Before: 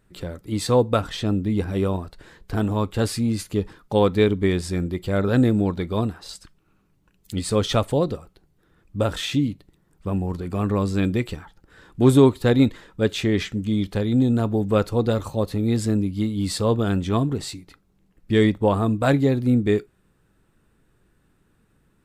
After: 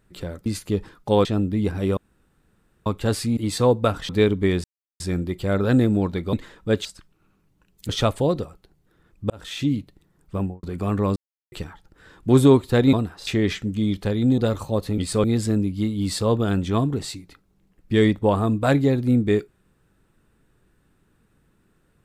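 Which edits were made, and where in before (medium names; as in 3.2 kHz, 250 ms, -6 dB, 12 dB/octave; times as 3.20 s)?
0.46–1.18 s: swap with 3.30–4.09 s
1.90–2.79 s: room tone
4.64 s: insert silence 0.36 s
5.97–6.31 s: swap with 12.65–13.17 s
7.35–7.61 s: move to 15.63 s
9.02–9.44 s: fade in
10.10–10.35 s: studio fade out
10.88–11.24 s: mute
14.28–15.03 s: delete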